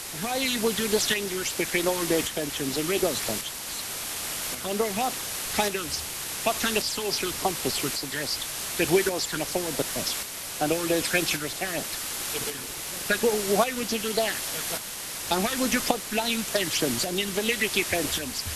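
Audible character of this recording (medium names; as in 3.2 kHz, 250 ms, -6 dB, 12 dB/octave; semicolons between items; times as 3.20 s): phasing stages 8, 3.4 Hz, lowest notch 660–2600 Hz; a quantiser's noise floor 6-bit, dither triangular; tremolo saw up 0.88 Hz, depth 50%; Vorbis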